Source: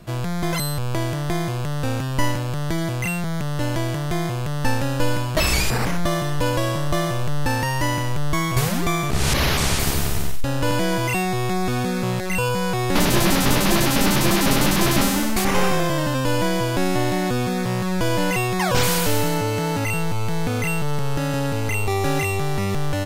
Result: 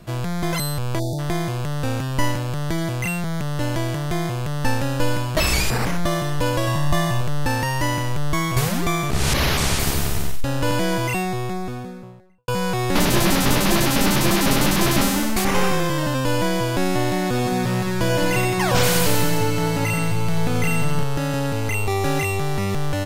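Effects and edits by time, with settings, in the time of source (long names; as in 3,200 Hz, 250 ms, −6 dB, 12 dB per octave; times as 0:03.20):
0:00.99–0:01.19: time-frequency box erased 940–3,400 Hz
0:06.67–0:07.21: comb filter 1.1 ms
0:10.89–0:12.48: fade out and dull
0:15.57–0:16.03: notch filter 650 Hz, Q 5.6
0:17.24–0:21.04: echo with a time of its own for lows and highs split 330 Hz, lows 212 ms, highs 88 ms, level −6 dB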